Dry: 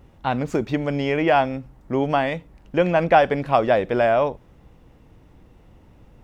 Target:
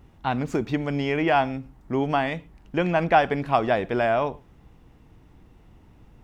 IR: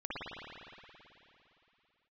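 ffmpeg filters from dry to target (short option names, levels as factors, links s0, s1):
-filter_complex "[0:a]equalizer=f=540:w=4.5:g=-7.5,asplit=2[s0][s1];[1:a]atrim=start_sample=2205,afade=t=out:st=0.2:d=0.01,atrim=end_sample=9261[s2];[s1][s2]afir=irnorm=-1:irlink=0,volume=0.0708[s3];[s0][s3]amix=inputs=2:normalize=0,volume=0.794"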